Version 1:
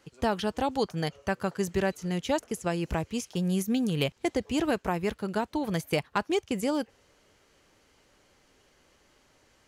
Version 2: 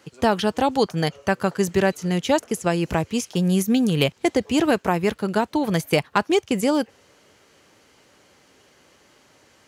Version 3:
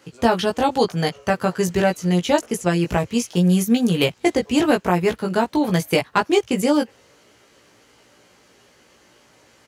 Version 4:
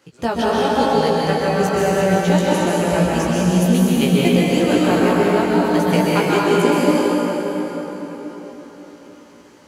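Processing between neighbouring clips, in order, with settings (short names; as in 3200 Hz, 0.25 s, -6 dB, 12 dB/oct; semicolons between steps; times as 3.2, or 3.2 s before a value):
HPF 96 Hz 12 dB/oct; gain +8 dB
doubler 17 ms -3 dB
plate-style reverb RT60 4.8 s, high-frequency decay 0.65×, pre-delay 0.115 s, DRR -7 dB; gain -4.5 dB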